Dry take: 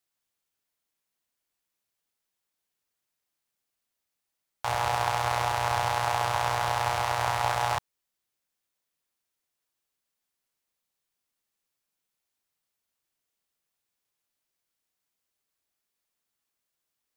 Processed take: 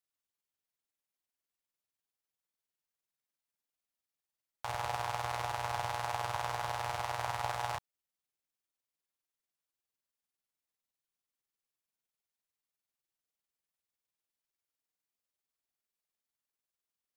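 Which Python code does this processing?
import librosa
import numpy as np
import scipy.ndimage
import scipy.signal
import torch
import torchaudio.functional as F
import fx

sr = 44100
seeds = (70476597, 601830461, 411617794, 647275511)

y = x * (1.0 - 0.48 / 2.0 + 0.48 / 2.0 * np.cos(2.0 * np.pi * 20.0 * (np.arange(len(x)) / sr)))
y = y * librosa.db_to_amplitude(-7.0)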